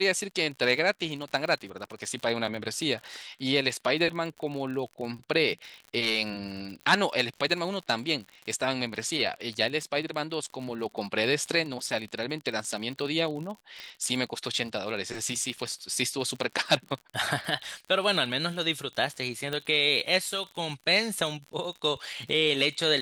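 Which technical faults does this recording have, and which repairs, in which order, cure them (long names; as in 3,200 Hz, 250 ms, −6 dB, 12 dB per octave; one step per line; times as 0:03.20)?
surface crackle 52 per second −35 dBFS
0:13.80: click −25 dBFS
0:19.53: click −18 dBFS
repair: click removal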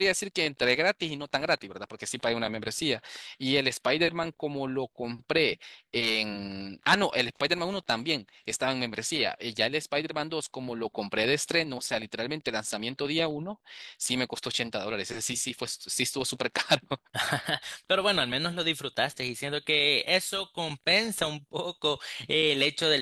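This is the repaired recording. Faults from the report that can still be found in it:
none of them is left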